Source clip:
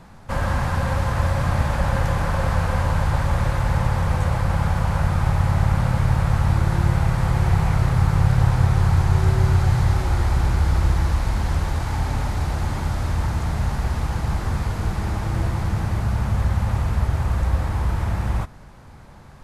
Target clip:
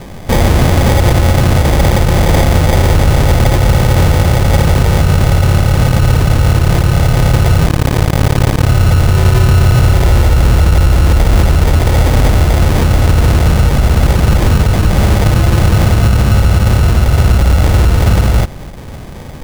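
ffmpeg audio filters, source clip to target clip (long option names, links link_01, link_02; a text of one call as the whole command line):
ffmpeg -i in.wav -filter_complex "[0:a]acrusher=samples=32:mix=1:aa=0.000001,asettb=1/sr,asplit=3[link_01][link_02][link_03];[link_01]atrim=end=7.664[link_04];[link_02]atrim=start=7.66:end=8.67,asetpts=PTS-STARTPTS,afade=type=in:duration=0.004:curve=qsin,afade=type=out:start_time=1.006:duration=0.004:curve=qsin,aeval=exprs='0.501*(cos(1*acos(clip(val(0)/0.501,-1,1)))-cos(1*PI/2))+0.1*(cos(7*acos(clip(val(0)/0.501,-1,1)))-cos(7*PI/2))':channel_layout=same[link_05];[link_03]atrim=start=8.666[link_06];[link_04][link_05]acrossfade=duration=0.004:curve1=hsin:curve2=qsin[link_07];[link_07][link_06]acrossfade=duration=0.004:curve1=qsin:curve2=hsin,alimiter=level_in=17.5dB:limit=-1dB:release=50:level=0:latency=1,volume=-1dB" out.wav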